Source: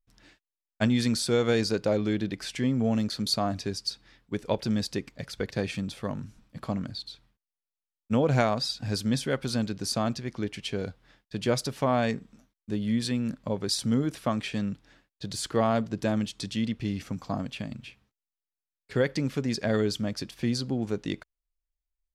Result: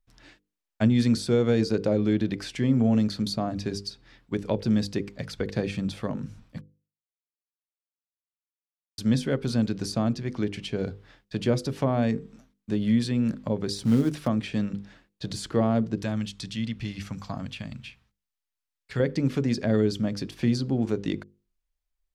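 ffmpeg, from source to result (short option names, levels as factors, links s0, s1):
-filter_complex "[0:a]asettb=1/sr,asplit=3[s0][s1][s2];[s0]atrim=end=13.764[s3];[s1]atrim=start=13.76:end=14.28,asetpts=PTS-STARTPTS,afade=t=in:d=0.004:c=qsin,afade=t=out:st=0.516:d=0.004:c=qsin,acrusher=bits=5:mode=log:mix=0:aa=0.000001[s4];[s2]atrim=start=14.276[s5];[s3][s4]acrossfade=d=0.004:c1=hsin:c2=qsin[s6];[s6][s5]acrossfade=d=0.004:c1=qsin:c2=hsin,asettb=1/sr,asplit=3[s7][s8][s9];[s7]atrim=end=15.964[s10];[s8]atrim=start=15.96:end=19,asetpts=PTS-STARTPTS,afade=t=in:d=0.004:c=qsin,afade=t=out:st=3.036:d=0.004:c=qsin,equalizer=f=370:t=o:w=2.1:g=-10[s11];[s9]atrim=start=18.996[s12];[s10][s11]acrossfade=d=0.004:c1=hsin:c2=qsin[s13];[s13][s12]acrossfade=d=0.004:c1=qsin:c2=hsin,asplit=3[s14][s15][s16];[s14]atrim=end=6.61,asetpts=PTS-STARTPTS,afade=t=out:st=6.606:d=0.004:c=hsin[s17];[s15]atrim=start=6.61:end=8.98,asetpts=PTS-STARTPTS,volume=0[s18];[s16]atrim=start=8.98,asetpts=PTS-STARTPTS,afade=t=in:d=0.004:c=hsin[s19];[s17][s18][s19]concat=n=3:v=0:a=1,highshelf=f=7300:g=-6.5,bandreject=f=50:t=h:w=6,bandreject=f=100:t=h:w=6,bandreject=f=150:t=h:w=6,bandreject=f=200:t=h:w=6,bandreject=f=250:t=h:w=6,bandreject=f=300:t=h:w=6,bandreject=f=350:t=h:w=6,bandreject=f=400:t=h:w=6,bandreject=f=450:t=h:w=6,bandreject=f=500:t=h:w=6,acrossover=split=480[s20][s21];[s21]acompressor=threshold=0.00631:ratio=2[s22];[s20][s22]amix=inputs=2:normalize=0,volume=1.78"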